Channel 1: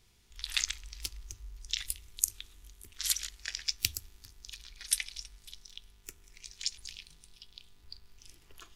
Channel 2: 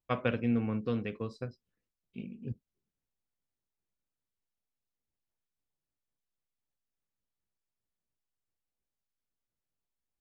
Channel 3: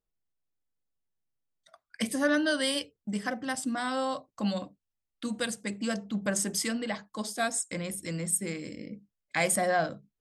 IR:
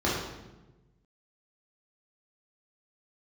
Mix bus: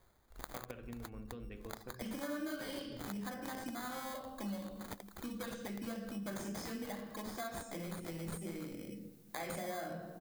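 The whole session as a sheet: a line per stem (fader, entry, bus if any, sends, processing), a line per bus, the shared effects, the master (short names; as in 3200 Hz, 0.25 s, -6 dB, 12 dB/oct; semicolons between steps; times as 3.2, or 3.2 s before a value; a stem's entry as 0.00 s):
-3.0 dB, 0.00 s, bus A, no send, reverb removal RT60 0.85 s; compressor, threshold -37 dBFS, peak gain reduction 16 dB
-9.5 dB, 0.45 s, no bus, send -21 dB, upward compressor, threshold -36 dBFS; compressor 4:1, threshold -37 dBFS, peak gain reduction 11 dB
-8.0 dB, 0.00 s, bus A, send -16 dB, dry
bus A: 0.0 dB, sample-and-hold 16×; compressor, threshold -38 dBFS, peak gain reduction 9 dB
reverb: on, RT60 1.1 s, pre-delay 3 ms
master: high shelf 9200 Hz +10.5 dB; compressor 2.5:1, threshold -41 dBFS, peak gain reduction 9 dB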